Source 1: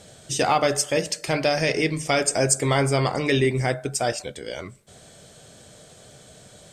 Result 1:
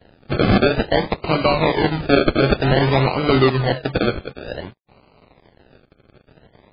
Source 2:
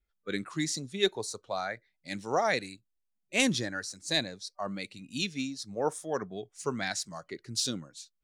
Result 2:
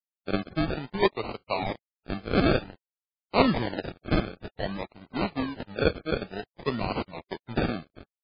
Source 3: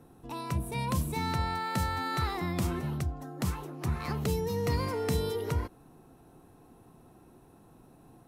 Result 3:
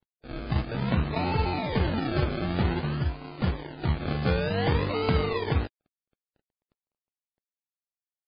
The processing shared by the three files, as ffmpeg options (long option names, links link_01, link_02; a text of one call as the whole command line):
ffmpeg -i in.wav -af "acrusher=samples=36:mix=1:aa=0.000001:lfo=1:lforange=21.6:lforate=0.54,aeval=exprs='sgn(val(0))*max(abs(val(0))-0.00422,0)':channel_layout=same,volume=6dB" -ar 11025 -c:a libmp3lame -b:a 16k out.mp3